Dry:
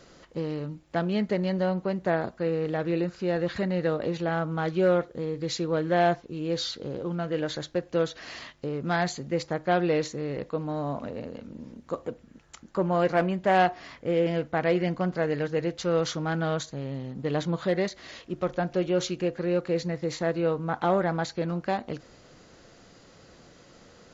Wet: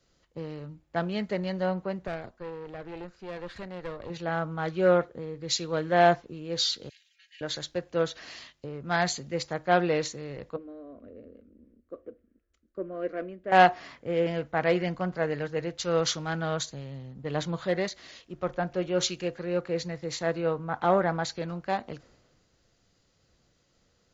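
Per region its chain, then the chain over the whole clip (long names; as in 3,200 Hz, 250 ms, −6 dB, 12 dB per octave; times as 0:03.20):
0:02.07–0:04.10: parametric band 140 Hz −6 dB 1.1 octaves + tube saturation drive 24 dB, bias 0.7
0:06.89–0:07.41: Chebyshev high-pass with heavy ripple 1,700 Hz, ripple 3 dB + comb filter 3.7 ms, depth 99%
0:10.56–0:13.52: low-pass filter 1,000 Hz 6 dB per octave + phaser with its sweep stopped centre 360 Hz, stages 4
whole clip: dynamic equaliser 270 Hz, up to −5 dB, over −37 dBFS, Q 0.73; multiband upward and downward expander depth 70%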